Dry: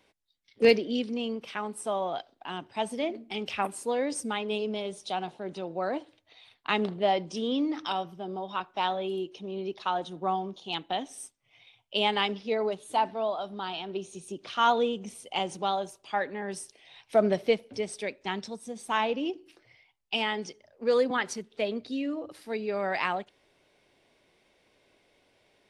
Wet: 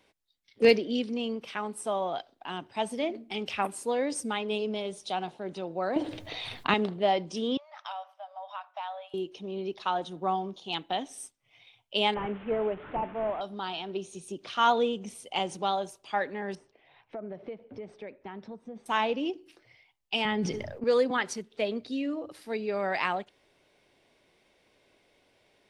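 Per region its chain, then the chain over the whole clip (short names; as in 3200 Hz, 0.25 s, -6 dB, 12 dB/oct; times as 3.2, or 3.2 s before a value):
5.96–6.74 low shelf 450 Hz +11.5 dB + fast leveller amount 50%
7.57–9.14 high shelf 3100 Hz -12 dB + compressor 3:1, threshold -34 dBFS + brick-wall FIR high-pass 560 Hz
12.14–13.41 delta modulation 16 kbps, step -37 dBFS + LPF 1600 Hz 6 dB/oct
16.55–18.86 LPF 1600 Hz + compressor 5:1, threshold -37 dBFS
20.25–20.84 tone controls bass +13 dB, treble -8 dB + sustainer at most 44 dB/s
whole clip: dry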